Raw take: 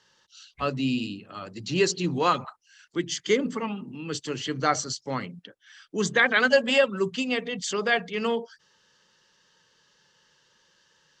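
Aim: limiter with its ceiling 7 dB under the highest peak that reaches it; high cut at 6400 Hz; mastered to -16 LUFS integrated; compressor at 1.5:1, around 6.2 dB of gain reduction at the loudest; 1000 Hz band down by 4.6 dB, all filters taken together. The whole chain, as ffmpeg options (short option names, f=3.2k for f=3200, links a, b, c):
-af "lowpass=6.4k,equalizer=f=1k:t=o:g=-6.5,acompressor=threshold=-34dB:ratio=1.5,volume=17.5dB,alimiter=limit=-4dB:level=0:latency=1"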